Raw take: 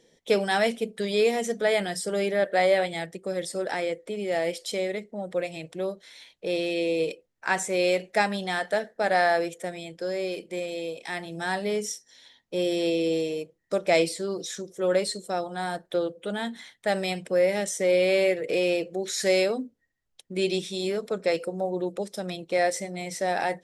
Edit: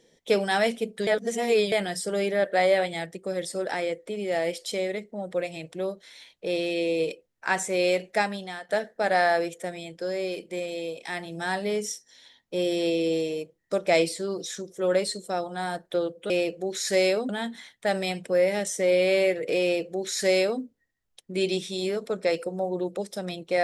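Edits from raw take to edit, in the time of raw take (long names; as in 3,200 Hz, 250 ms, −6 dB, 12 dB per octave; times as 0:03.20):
0:01.07–0:01.72: reverse
0:08.10–0:08.69: fade out, to −15.5 dB
0:18.63–0:19.62: duplicate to 0:16.30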